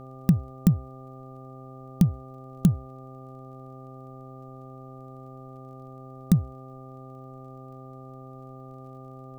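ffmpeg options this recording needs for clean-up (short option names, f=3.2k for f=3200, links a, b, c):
-af "adeclick=t=4,bandreject=f=130.8:t=h:w=4,bandreject=f=261.6:t=h:w=4,bandreject=f=392.4:t=h:w=4,bandreject=f=523.2:t=h:w=4,bandreject=f=654:t=h:w=4,bandreject=f=784.8:t=h:w=4,bandreject=f=1.2k:w=30,agate=range=-21dB:threshold=-36dB"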